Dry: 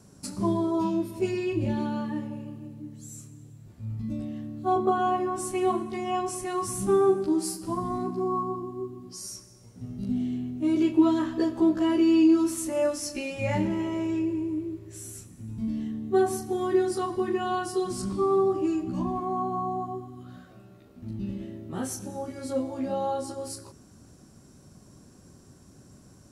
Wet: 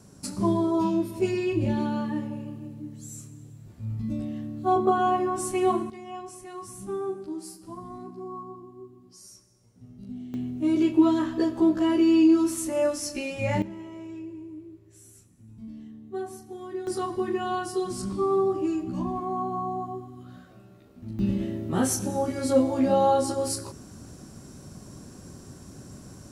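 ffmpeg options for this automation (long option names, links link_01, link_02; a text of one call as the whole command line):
ffmpeg -i in.wav -af "asetnsamples=nb_out_samples=441:pad=0,asendcmd='5.9 volume volume -10dB;10.34 volume volume 1dB;13.62 volume volume -11dB;16.87 volume volume -0.5dB;21.19 volume volume 8dB',volume=2dB" out.wav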